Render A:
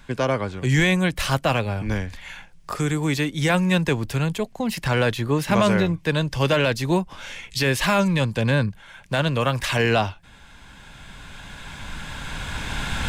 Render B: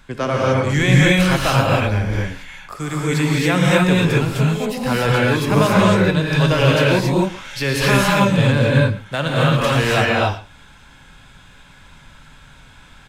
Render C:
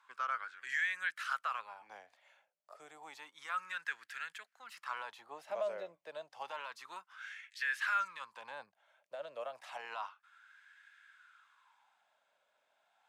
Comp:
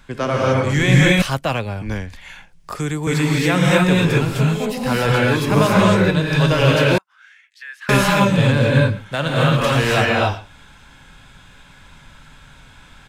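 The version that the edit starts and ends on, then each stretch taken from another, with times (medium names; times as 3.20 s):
B
1.22–3.07 s: from A
6.98–7.89 s: from C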